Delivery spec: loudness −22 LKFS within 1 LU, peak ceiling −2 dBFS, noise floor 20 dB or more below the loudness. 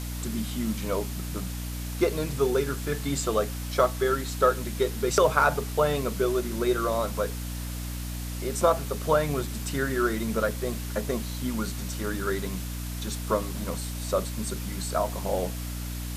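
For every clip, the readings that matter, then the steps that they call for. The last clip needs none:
mains hum 60 Hz; hum harmonics up to 300 Hz; level of the hum −32 dBFS; background noise floor −34 dBFS; target noise floor −48 dBFS; integrated loudness −28.0 LKFS; sample peak −6.5 dBFS; target loudness −22.0 LKFS
→ hum removal 60 Hz, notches 5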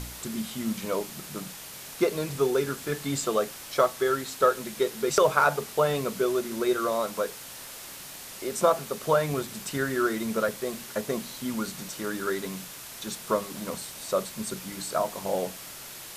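mains hum none found; background noise floor −43 dBFS; target noise floor −49 dBFS
→ noise reduction from a noise print 6 dB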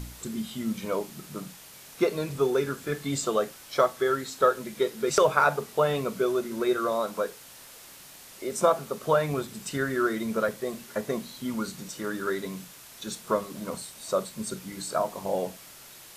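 background noise floor −48 dBFS; target noise floor −49 dBFS
→ noise reduction from a noise print 6 dB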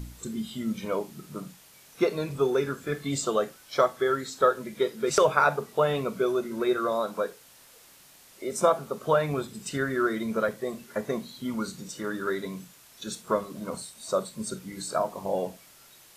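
background noise floor −54 dBFS; integrated loudness −28.5 LKFS; sample peak −7.0 dBFS; target loudness −22.0 LKFS
→ level +6.5 dB
brickwall limiter −2 dBFS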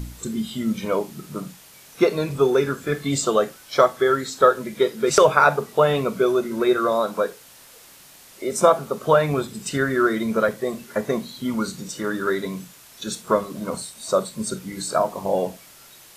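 integrated loudness −22.0 LKFS; sample peak −2.0 dBFS; background noise floor −48 dBFS

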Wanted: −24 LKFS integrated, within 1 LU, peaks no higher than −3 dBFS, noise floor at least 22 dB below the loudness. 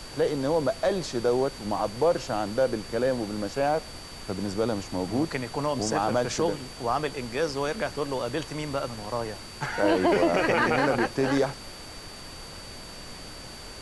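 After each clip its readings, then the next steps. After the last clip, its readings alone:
interfering tone 4,600 Hz; level of the tone −45 dBFS; background noise floor −42 dBFS; target noise floor −49 dBFS; integrated loudness −27.0 LKFS; sample peak −10.0 dBFS; target loudness −24.0 LKFS
→ notch filter 4,600 Hz, Q 30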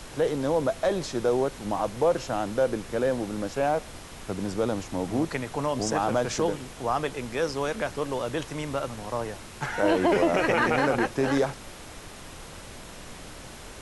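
interfering tone none found; background noise floor −43 dBFS; target noise floor −49 dBFS
→ noise reduction from a noise print 6 dB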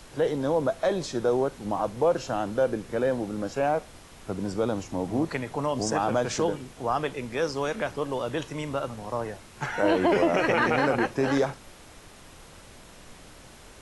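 background noise floor −49 dBFS; target noise floor −50 dBFS
→ noise reduction from a noise print 6 dB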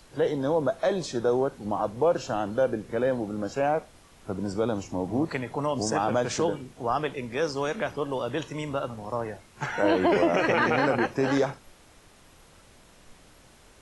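background noise floor −55 dBFS; integrated loudness −27.5 LKFS; sample peak −10.0 dBFS; target loudness −24.0 LKFS
→ level +3.5 dB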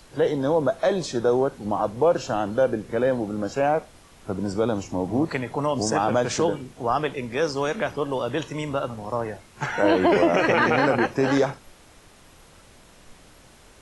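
integrated loudness −24.0 LKFS; sample peak −6.5 dBFS; background noise floor −52 dBFS

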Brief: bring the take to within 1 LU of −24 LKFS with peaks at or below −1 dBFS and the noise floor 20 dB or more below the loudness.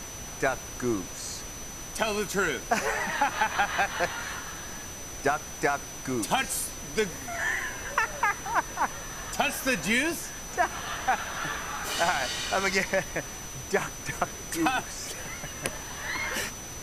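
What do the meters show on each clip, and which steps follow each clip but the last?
interfering tone 6,000 Hz; level of the tone −41 dBFS; background noise floor −40 dBFS; target noise floor −50 dBFS; integrated loudness −29.5 LKFS; sample peak −9.5 dBFS; target loudness −24.0 LKFS
→ notch filter 6,000 Hz, Q 30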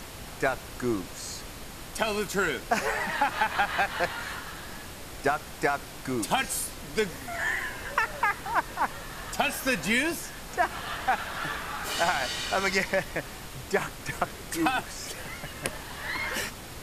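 interfering tone none found; background noise floor −42 dBFS; target noise floor −50 dBFS
→ noise reduction from a noise print 8 dB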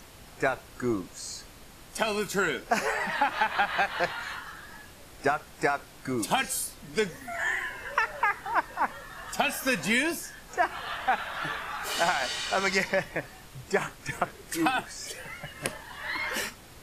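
background noise floor −50 dBFS; integrated loudness −29.5 LKFS; sample peak −9.5 dBFS; target loudness −24.0 LKFS
→ level +5.5 dB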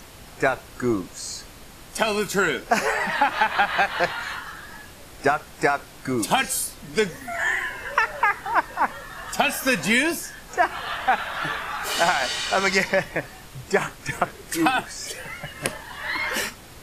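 integrated loudness −24.0 LKFS; sample peak −4.0 dBFS; background noise floor −44 dBFS

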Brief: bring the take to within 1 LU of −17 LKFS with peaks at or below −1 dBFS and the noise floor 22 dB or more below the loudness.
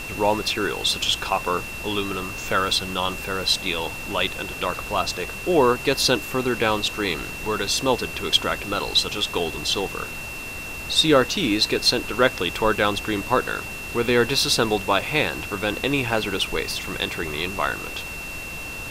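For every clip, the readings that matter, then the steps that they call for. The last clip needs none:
interfering tone 2,700 Hz; level of the tone −33 dBFS; background noise floor −33 dBFS; target noise floor −45 dBFS; integrated loudness −22.5 LKFS; sample peak −2.5 dBFS; target loudness −17.0 LKFS
→ notch filter 2,700 Hz, Q 30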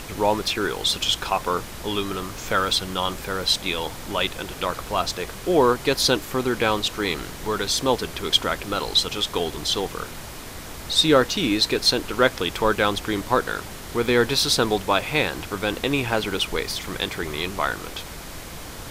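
interfering tone none found; background noise floor −37 dBFS; target noise floor −45 dBFS
→ noise reduction from a noise print 8 dB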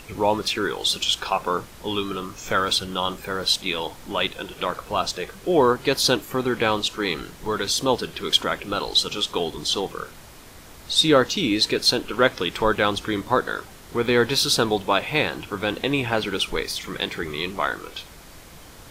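background noise floor −45 dBFS; integrated loudness −23.0 LKFS; sample peak −2.5 dBFS; target loudness −17.0 LKFS
→ level +6 dB
brickwall limiter −1 dBFS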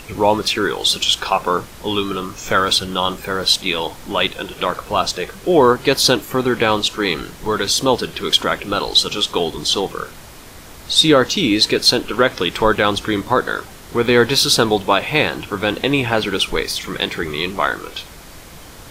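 integrated loudness −17.0 LKFS; sample peak −1.0 dBFS; background noise floor −39 dBFS

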